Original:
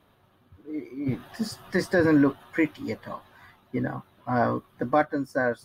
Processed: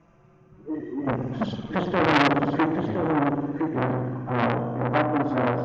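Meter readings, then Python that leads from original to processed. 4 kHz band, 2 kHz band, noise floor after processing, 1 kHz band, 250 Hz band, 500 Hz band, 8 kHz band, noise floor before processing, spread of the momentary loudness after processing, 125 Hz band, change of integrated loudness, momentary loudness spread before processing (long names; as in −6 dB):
+8.0 dB, +2.0 dB, −56 dBFS, +5.5 dB, +1.5 dB, +1.5 dB, can't be measured, −63 dBFS, 9 LU, +5.5 dB, +2.5 dB, 15 LU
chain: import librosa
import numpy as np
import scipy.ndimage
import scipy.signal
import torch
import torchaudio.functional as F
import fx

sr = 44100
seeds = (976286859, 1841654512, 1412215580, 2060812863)

p1 = fx.freq_compress(x, sr, knee_hz=1400.0, ratio=1.5)
p2 = fx.env_flanger(p1, sr, rest_ms=6.1, full_db=-21.5)
p3 = fx.hpss(p2, sr, part='percussive', gain_db=-3)
p4 = fx.high_shelf(p3, sr, hz=4500.0, db=-11.0)
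p5 = fx.rev_spring(p4, sr, rt60_s=1.6, pass_ms=(56,), chirp_ms=30, drr_db=4.0)
p6 = fx.rider(p5, sr, range_db=3, speed_s=0.5)
p7 = p5 + (p6 * librosa.db_to_amplitude(-2.0))
p8 = fx.low_shelf(p7, sr, hz=260.0, db=6.5)
p9 = p8 + fx.echo_single(p8, sr, ms=1014, db=-6.5, dry=0)
y = fx.transformer_sat(p9, sr, knee_hz=2000.0)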